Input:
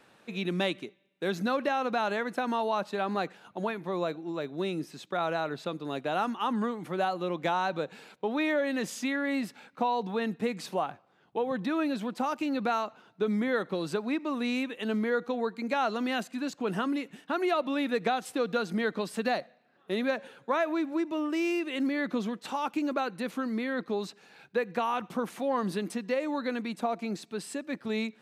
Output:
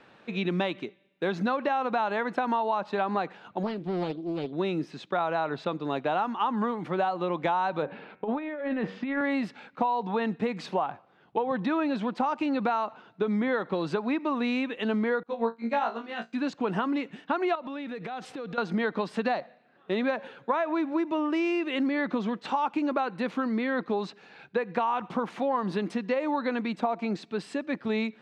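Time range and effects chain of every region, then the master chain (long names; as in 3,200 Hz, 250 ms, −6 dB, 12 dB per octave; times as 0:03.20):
0:03.63–0:04.53: flat-topped bell 1,200 Hz −12.5 dB 2.3 octaves + highs frequency-modulated by the lows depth 0.48 ms
0:07.82–0:09.21: hum removal 95.24 Hz, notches 28 + compressor whose output falls as the input rises −32 dBFS, ratio −0.5 + high-frequency loss of the air 390 metres
0:15.23–0:16.33: running median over 3 samples + flutter between parallel walls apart 3 metres, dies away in 0.33 s + expander for the loud parts 2.5 to 1, over −38 dBFS
0:17.55–0:18.58: downward compressor 10 to 1, threshold −37 dBFS + transient designer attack −2 dB, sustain +4 dB
whole clip: low-pass filter 3,800 Hz 12 dB per octave; dynamic equaliser 920 Hz, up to +7 dB, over −45 dBFS, Q 2; downward compressor, threshold −28 dBFS; level +4.5 dB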